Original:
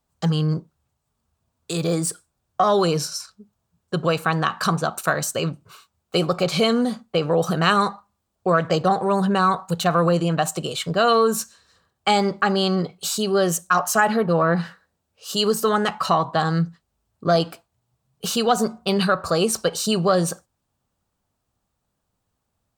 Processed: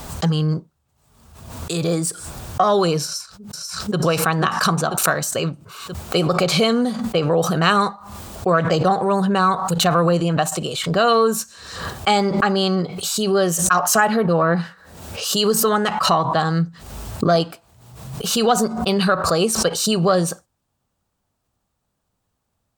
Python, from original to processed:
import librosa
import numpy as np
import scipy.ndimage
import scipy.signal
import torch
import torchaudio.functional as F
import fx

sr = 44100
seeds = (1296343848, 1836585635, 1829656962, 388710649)

y = fx.echo_throw(x, sr, start_s=3.04, length_s=0.93, ms=490, feedback_pct=35, wet_db=-4.0)
y = fx.pre_swell(y, sr, db_per_s=54.0)
y = y * 10.0 ** (1.5 / 20.0)